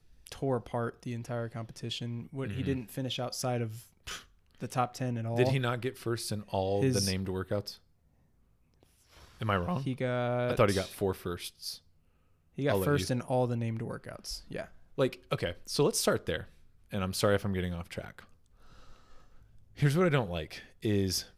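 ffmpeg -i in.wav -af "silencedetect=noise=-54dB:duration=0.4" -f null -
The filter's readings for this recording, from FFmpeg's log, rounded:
silence_start: 7.78
silence_end: 8.74 | silence_duration: 0.96
silence_start: 11.79
silence_end: 12.57 | silence_duration: 0.78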